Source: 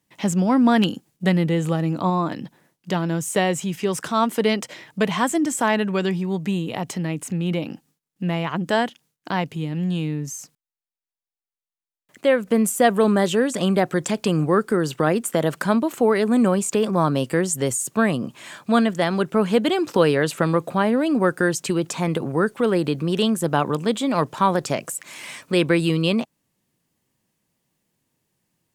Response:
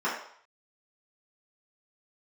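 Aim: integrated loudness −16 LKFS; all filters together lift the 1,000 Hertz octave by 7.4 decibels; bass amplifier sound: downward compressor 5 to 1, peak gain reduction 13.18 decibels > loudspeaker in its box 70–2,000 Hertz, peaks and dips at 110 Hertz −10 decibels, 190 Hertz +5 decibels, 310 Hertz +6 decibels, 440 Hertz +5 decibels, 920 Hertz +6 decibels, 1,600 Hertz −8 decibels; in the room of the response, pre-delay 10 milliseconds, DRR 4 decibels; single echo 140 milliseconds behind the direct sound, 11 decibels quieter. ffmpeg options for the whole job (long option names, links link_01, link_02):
-filter_complex "[0:a]equalizer=frequency=1000:width_type=o:gain=5.5,aecho=1:1:140:0.282,asplit=2[link_01][link_02];[1:a]atrim=start_sample=2205,adelay=10[link_03];[link_02][link_03]afir=irnorm=-1:irlink=0,volume=-16dB[link_04];[link_01][link_04]amix=inputs=2:normalize=0,acompressor=threshold=-20dB:ratio=5,highpass=frequency=70:width=0.5412,highpass=frequency=70:width=1.3066,equalizer=frequency=110:width_type=q:width=4:gain=-10,equalizer=frequency=190:width_type=q:width=4:gain=5,equalizer=frequency=310:width_type=q:width=4:gain=6,equalizer=frequency=440:width_type=q:width=4:gain=5,equalizer=frequency=920:width_type=q:width=4:gain=6,equalizer=frequency=1600:width_type=q:width=4:gain=-8,lowpass=frequency=2000:width=0.5412,lowpass=frequency=2000:width=1.3066,volume=6dB"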